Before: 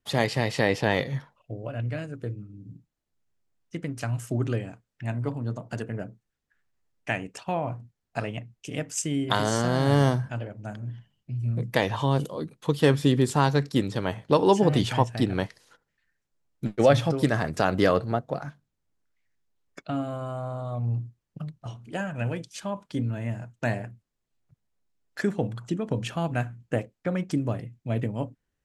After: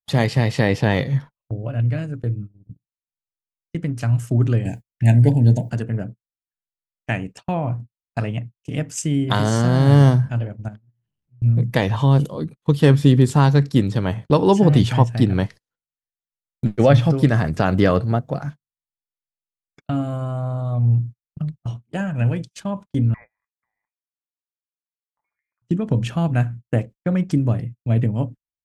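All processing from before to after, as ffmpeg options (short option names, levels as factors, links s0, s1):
-filter_complex "[0:a]asettb=1/sr,asplit=3[s0][s1][s2];[s0]atrim=end=4.654[s3];[s1]atrim=start=4.65:end=5.7,asetpts=PTS-STARTPTS,afade=t=in:d=0.004:c=qsin,afade=t=out:st=1.046:d=0.004:c=qsin,aemphasis=mode=production:type=50kf,acontrast=76,asuperstop=centerf=1200:order=8:qfactor=1.8[s4];[s2]atrim=start=5.696[s5];[s3][s4]acrossfade=d=0.004:c1=hsin:c2=qsin[s6];[s6][s5]acrossfade=d=0.004:c1=qsin:c2=hsin,asettb=1/sr,asplit=3[s7][s8][s9];[s7]atrim=end=10.684[s10];[s8]atrim=start=10.68:end=11.42,asetpts=PTS-STARTPTS,afade=t=in:d=0.004:c=qsin,afade=t=out:st=0.736:d=0.004:c=qsin,aeval=exprs='val(0)+0.5*0.00355*sgn(val(0))':c=same,highshelf=f=5000:g=-11.5,acompressor=threshold=0.00631:ratio=4:attack=3.2:release=140:knee=1:detection=peak[s11];[s9]atrim=start=11.416[s12];[s10][s11]acrossfade=d=0.004:c1=hsin:c2=qsin[s13];[s13][s12]acrossfade=d=0.004:c1=qsin:c2=hsin,asettb=1/sr,asplit=3[s14][s15][s16];[s14]atrim=end=16.754[s17];[s15]atrim=start=16.75:end=20.25,asetpts=PTS-STARTPTS,afade=t=in:d=0.004:c=qsin,afade=t=out:st=3.496:d=0.004:c=qsin,acrossover=split=4300[s18][s19];[s19]acompressor=threshold=0.00355:ratio=4:attack=1:release=60[s20];[s18][s20]amix=inputs=2:normalize=0,highshelf=f=4200:g=4,bandreject=f=3900:w=24[s21];[s16]atrim=start=20.246[s22];[s17][s21]acrossfade=d=0.004:c1=hsin:c2=qsin[s23];[s23][s22]acrossfade=d=0.004:c1=qsin:c2=hsin,asettb=1/sr,asplit=3[s24][s25][s26];[s24]atrim=end=23.144[s27];[s25]atrim=start=23.14:end=25.62,asetpts=PTS-STARTPTS,afade=t=in:d=0.004:c=qsin,afade=t=out:st=2.476:d=0.004:c=qsin,highpass=700,lowpass=f=2200:t=q:w=0.5098,lowpass=f=2200:t=q:w=0.6013,lowpass=f=2200:t=q:w=0.9,lowpass=f=2200:t=q:w=2.563,afreqshift=-2600,acompressor=threshold=0.00708:ratio=16:attack=3.2:release=140:knee=1:detection=peak[s28];[s26]atrim=start=25.616[s29];[s27][s28]acrossfade=d=0.004:c1=hsin:c2=qsin[s30];[s30][s29]acrossfade=d=0.004:c1=qsin:c2=hsin,agate=range=0.0158:threshold=0.01:ratio=16:detection=peak,bass=f=250:g=9,treble=f=4000:g=-1,volume=1.33"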